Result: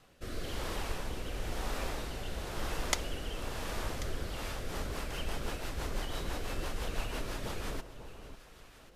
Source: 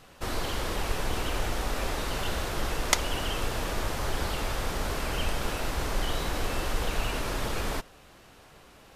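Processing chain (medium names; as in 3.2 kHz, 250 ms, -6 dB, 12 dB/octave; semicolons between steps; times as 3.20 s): rotary cabinet horn 1 Hz, later 6 Hz, at 4.15 s; echo whose repeats swap between lows and highs 544 ms, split 1.1 kHz, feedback 54%, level -10.5 dB; trim -5.5 dB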